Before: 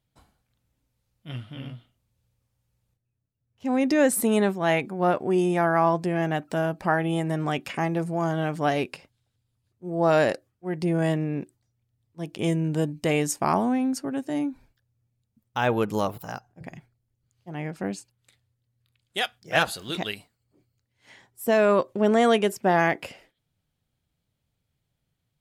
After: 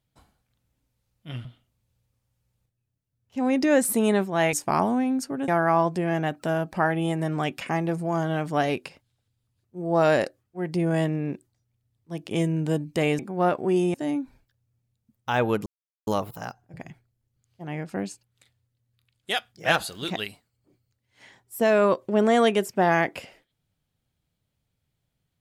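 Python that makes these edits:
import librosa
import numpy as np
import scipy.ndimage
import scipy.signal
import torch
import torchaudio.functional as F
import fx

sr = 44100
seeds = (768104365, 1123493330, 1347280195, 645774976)

y = fx.edit(x, sr, fx.cut(start_s=1.45, length_s=0.28),
    fx.swap(start_s=4.81, length_s=0.75, other_s=13.27, other_length_s=0.95),
    fx.insert_silence(at_s=15.94, length_s=0.41), tone=tone)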